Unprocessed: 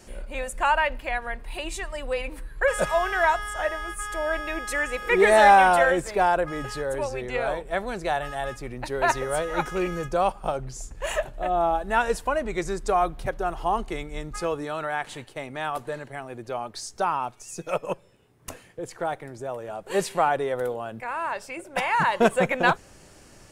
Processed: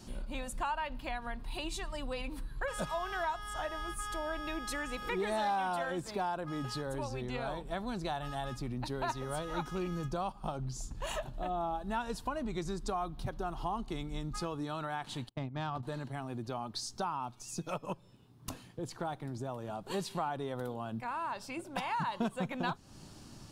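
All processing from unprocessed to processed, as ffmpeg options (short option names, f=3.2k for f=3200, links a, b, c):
-filter_complex "[0:a]asettb=1/sr,asplit=3[a][b][c];[a]atrim=end=5.434[d];[b]atrim=start=5.43:end=6.87,asetpts=PTS-STARTPTS,afade=t=in:d=0.004:c=qsin,afade=t=out:st=1.436:d=0.004:c=qsin,highpass=f=95:p=1,asoftclip=type=hard:threshold=-7dB[e];[c]atrim=start=6.866[f];[d][e]acrossfade=d=0.004:c1=hsin:c2=qsin[g];[g][f]acrossfade=d=0.004:c1=qsin:c2=hsin,asettb=1/sr,asplit=3[h][i][j];[h]atrim=end=15.294[k];[i]atrim=start=15.29:end=15.83,asetpts=PTS-STARTPTS,afade=t=in:d=0.004:c=qsin,afade=t=out:st=0.536:d=0.004:c=qsin,agate=range=-32dB:threshold=-38dB:ratio=16:release=100:detection=peak,equalizer=f=110:t=o:w=1:g=10.5,adynamicsmooth=sensitivity=2:basefreq=2.7k[l];[j]atrim=start=15.826[m];[k][l]acrossfade=d=0.004:c1=hsin:c2=qsin[n];[n][m]acrossfade=d=0.004:c1=qsin:c2=hsin,equalizer=f=125:t=o:w=1:g=6,equalizer=f=250:t=o:w=1:g=7,equalizer=f=500:t=o:w=1:g=-8,equalizer=f=1k:t=o:w=1:g=4,equalizer=f=2k:t=o:w=1:g=-9,equalizer=f=4k:t=o:w=1:g=7,equalizer=f=8k:t=o:w=1:g=-4,acompressor=threshold=-32dB:ratio=3,volume=-3dB"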